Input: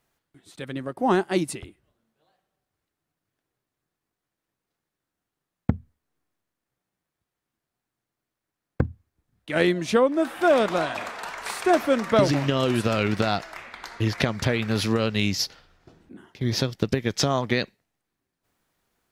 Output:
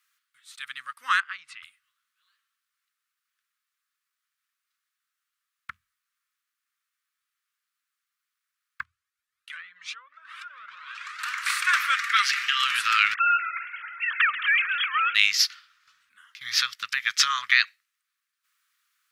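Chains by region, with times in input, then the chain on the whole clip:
0:01.20–0:01.63: band-pass filter 180–2,600 Hz + downward compressor, threshold −31 dBFS
0:08.83–0:11.20: treble cut that deepens with the level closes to 1,800 Hz, closed at −17.5 dBFS + downward compressor 8 to 1, threshold −29 dBFS + flanger whose copies keep moving one way rising 2 Hz
0:11.94–0:12.63: high-pass filter 1,300 Hz 24 dB per octave + comb filter 5 ms, depth 39%
0:13.14–0:15.15: three sine waves on the formant tracks + feedback echo with a swinging delay time 134 ms, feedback 71%, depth 113 cents, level −12.5 dB
whole clip: dynamic equaliser 1,900 Hz, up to +7 dB, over −38 dBFS, Q 0.75; elliptic high-pass filter 1,200 Hz, stop band 40 dB; level +4 dB

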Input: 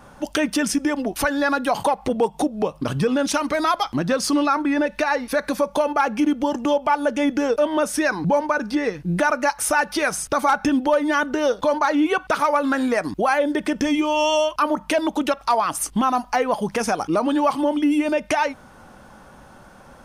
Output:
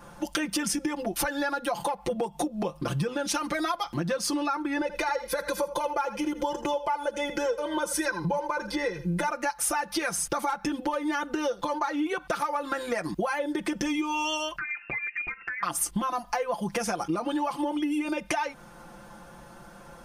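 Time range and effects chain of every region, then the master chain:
0:04.81–0:09.29: notch filter 2,700 Hz, Q 11 + comb filter 2 ms, depth 70% + single-tap delay 82 ms −14 dB
0:14.58–0:15.63: voice inversion scrambler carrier 2,700 Hz + downward compressor 12 to 1, threshold −28 dBFS
whole clip: comb filter 5.8 ms, depth 94%; downward compressor, threshold −21 dBFS; high-shelf EQ 8,000 Hz +4 dB; level −4.5 dB

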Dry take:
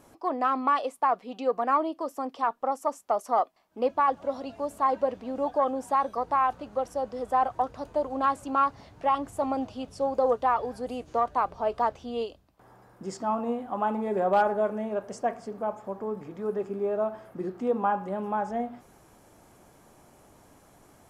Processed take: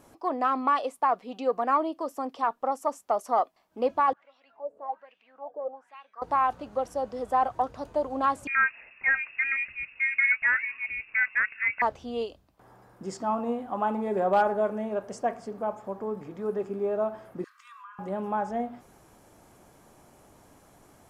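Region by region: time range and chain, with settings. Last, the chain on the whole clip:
0:04.13–0:06.22: upward compression, threshold −37 dBFS + LFO wah 1.2 Hz 460–2,800 Hz, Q 7
0:08.47–0:11.82: voice inversion scrambler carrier 2,700 Hz + one half of a high-frequency compander decoder only
0:17.44–0:17.99: Chebyshev high-pass filter 1,000 Hz, order 10 + downward compressor 8 to 1, threshold −43 dBFS + comb filter 2.6 ms, depth 44%
whole clip: no processing

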